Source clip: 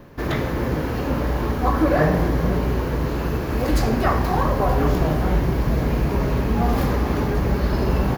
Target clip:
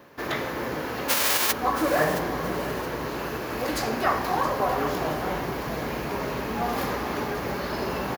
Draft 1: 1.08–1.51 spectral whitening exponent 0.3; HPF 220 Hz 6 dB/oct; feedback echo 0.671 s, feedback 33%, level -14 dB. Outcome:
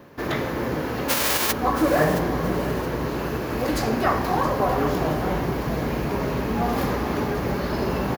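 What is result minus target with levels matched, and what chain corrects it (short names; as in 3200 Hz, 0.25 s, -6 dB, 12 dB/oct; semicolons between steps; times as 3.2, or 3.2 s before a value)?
250 Hz band +3.5 dB
1.08–1.51 spectral whitening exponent 0.3; HPF 650 Hz 6 dB/oct; feedback echo 0.671 s, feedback 33%, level -14 dB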